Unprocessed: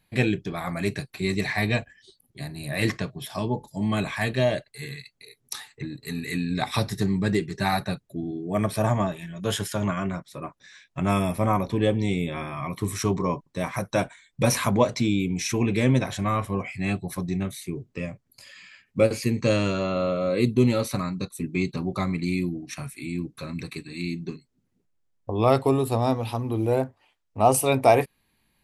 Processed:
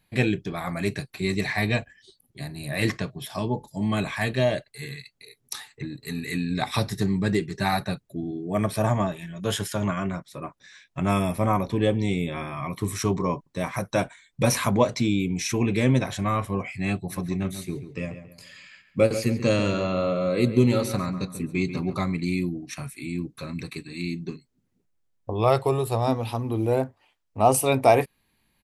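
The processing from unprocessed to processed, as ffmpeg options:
-filter_complex "[0:a]asplit=3[a][b][c];[a]afade=t=out:st=17.09:d=0.02[d];[b]asplit=2[e][f];[f]adelay=138,lowpass=f=3.1k:p=1,volume=-10.5dB,asplit=2[g][h];[h]adelay=138,lowpass=f=3.1k:p=1,volume=0.37,asplit=2[i][j];[j]adelay=138,lowpass=f=3.1k:p=1,volume=0.37,asplit=2[k][l];[l]adelay=138,lowpass=f=3.1k:p=1,volume=0.37[m];[e][g][i][k][m]amix=inputs=5:normalize=0,afade=t=in:st=17.09:d=0.02,afade=t=out:st=21.97:d=0.02[n];[c]afade=t=in:st=21.97:d=0.02[o];[d][n][o]amix=inputs=3:normalize=0,asettb=1/sr,asplit=3[p][q][r];[p]atrim=end=25.334[s];[q]atrim=start=25.33:end=26.08,asetpts=PTS-STARTPTS,afade=t=in:d=0.004:c=qsin,afade=t=out:st=0.746:d=0.004:c=qsin,equalizer=f=260:w=4.4:g=-13.5[t];[r]atrim=start=26.076[u];[s][t]acrossfade=d=0.004:c1=hsin:c2=qsin[v];[v][u]acrossfade=d=0.004:c1=qsin:c2=hsin"

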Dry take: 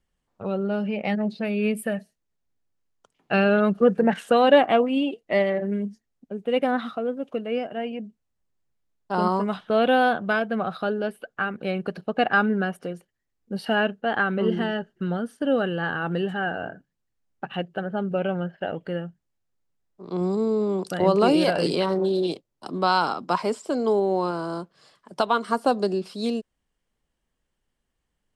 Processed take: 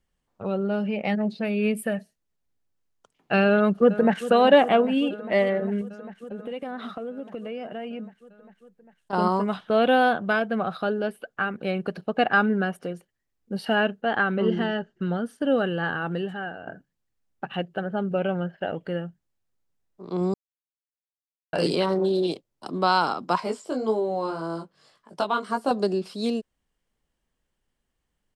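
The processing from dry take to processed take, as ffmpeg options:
-filter_complex "[0:a]asplit=2[a][b];[b]afade=t=in:st=3.5:d=0.01,afade=t=out:st=4.28:d=0.01,aecho=0:1:400|800|1200|1600|2000|2400|2800|3200|3600|4000|4400|4800:0.199526|0.159621|0.127697|0.102157|0.0817259|0.0653808|0.0523046|0.0418437|0.0334749|0.02678|0.021424|0.0171392[c];[a][c]amix=inputs=2:normalize=0,asettb=1/sr,asplit=3[d][e][f];[d]atrim=end=5.814[g];[e]atrim=start=5.81:end=9.13,asetpts=PTS-STARTPTS,afade=t=in:d=0.004:c=qsin,afade=t=out:st=3.316:d=0.004:c=qsin,acompressor=threshold=-30dB:ratio=6:attack=3.2:release=140:knee=1:detection=peak[h];[f]atrim=start=9.126[i];[g][h]acrossfade=d=0.004:c1=hsin:c2=qsin[j];[j][i]acrossfade=d=0.004:c1=qsin:c2=hsin,asettb=1/sr,asplit=3[k][l][m];[k]atrim=end=14.044[n];[l]atrim=start=14.04:end=15.23,asetpts=PTS-STARTPTS,afade=t=in:d=0.004:c=qsin,afade=t=out:st=1.186:d=0.004:c=qsin,lowpass=f=8.1k:w=0.5412,lowpass=f=8.1k:w=1.3066[o];[m]atrim=start=15.226[p];[n][o]acrossfade=d=0.004:c1=hsin:c2=qsin[q];[q][p]acrossfade=d=0.004:c1=qsin:c2=hsin,asettb=1/sr,asplit=3[r][s][t];[r]atrim=end=23.404[u];[s]atrim=start=23.4:end=25.71,asetpts=PTS-STARTPTS,afade=t=in:d=0.004:c=qsin,afade=t=out:st=2.306:d=0.004:c=qsin,flanger=delay=18:depth=2.4:speed=1.8[v];[t]atrim=start=25.706[w];[u][v]acrossfade=d=0.004:c1=hsin:c2=qsin[x];[x][w]acrossfade=d=0.004:c1=qsin:c2=hsin,asplit=4[y][z][aa][ab];[y]atrim=end=16.67,asetpts=PTS-STARTPTS,afade=t=out:st=15.87:d=0.8:silence=0.281838[ac];[z]atrim=start=16.67:end=20.34,asetpts=PTS-STARTPTS,afade=t=in:d=0.004:c=hsin:silence=0.281838,afade=t=out:st=3.666:d=0.004:c=hsin[ad];[aa]atrim=start=20.34:end=21.53,asetpts=PTS-STARTPTS,volume=0[ae];[ab]atrim=start=21.53,asetpts=PTS-STARTPTS,afade=t=in:d=0.004:c=hsin[af];[ac][ad][ae][af]concat=n=4:v=0:a=1"

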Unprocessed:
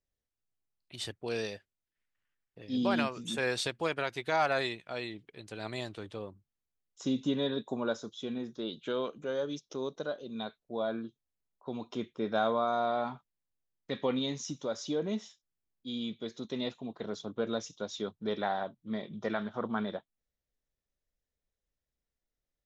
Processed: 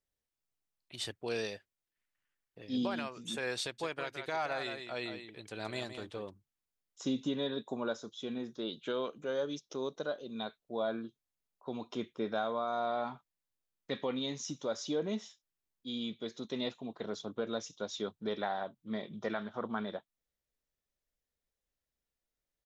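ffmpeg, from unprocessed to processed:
-filter_complex "[0:a]asplit=3[a][b][c];[a]afade=t=out:st=3.78:d=0.02[d];[b]aecho=1:1:167:0.355,afade=t=in:st=3.78:d=0.02,afade=t=out:st=6.29:d=0.02[e];[c]afade=t=in:st=6.29:d=0.02[f];[d][e][f]amix=inputs=3:normalize=0,lowshelf=f=220:g=-4.5,alimiter=limit=-24dB:level=0:latency=1:release=480"

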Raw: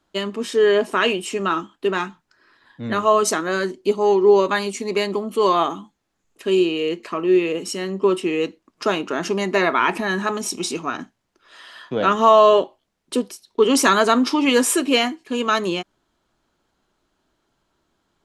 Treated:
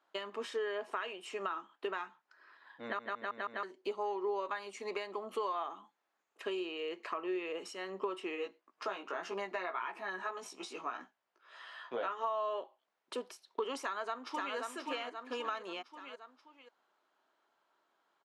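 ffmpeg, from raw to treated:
-filter_complex "[0:a]asplit=3[a][b][c];[a]afade=t=out:st=8.35:d=0.02[d];[b]flanger=delay=15:depth=2.1:speed=1.7,afade=t=in:st=8.35:d=0.02,afade=t=out:st=12.23:d=0.02[e];[c]afade=t=in:st=12.23:d=0.02[f];[d][e][f]amix=inputs=3:normalize=0,asplit=2[g][h];[h]afade=t=in:st=13.81:d=0.01,afade=t=out:st=14.56:d=0.01,aecho=0:1:530|1060|1590|2120:0.530884|0.18581|0.0650333|0.0227617[i];[g][i]amix=inputs=2:normalize=0,asplit=6[j][k][l][m][n][o];[j]atrim=end=2.992[p];[k]atrim=start=2.828:end=2.992[q];[l]atrim=start=2.828:end=2.992[r];[m]atrim=start=2.828:end=2.992[s];[n]atrim=start=2.828:end=2.992[t];[o]atrim=start=3.628[u];[p][q]acrossfade=d=0.004:c1=hsin:c2=hsin[v];[v][r]acrossfade=d=0.004:c1=hsin:c2=hsin[w];[w][s]acrossfade=d=0.004:c1=hsin:c2=hsin[x];[x][t]acrossfade=d=0.004:c1=hsin:c2=hsin[y];[y][u]acrossfade=d=0.004:c1=hsin:c2=hsin,highpass=780,acompressor=threshold=-34dB:ratio=6,lowpass=f=1.1k:p=1,volume=1.5dB"

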